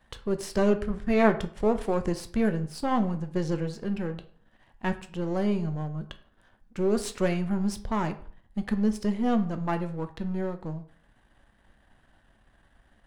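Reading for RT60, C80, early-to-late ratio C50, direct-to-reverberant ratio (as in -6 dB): 0.50 s, 17.5 dB, 14.0 dB, 8.0 dB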